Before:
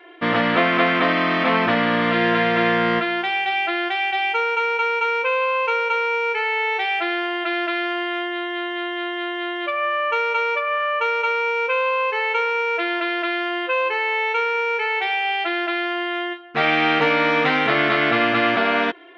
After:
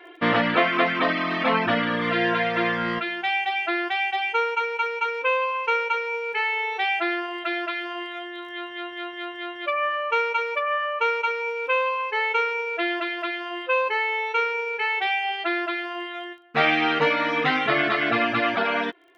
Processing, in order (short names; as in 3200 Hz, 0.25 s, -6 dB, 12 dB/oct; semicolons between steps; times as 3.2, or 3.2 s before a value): reverb removal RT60 2 s; crackle 23/s -47 dBFS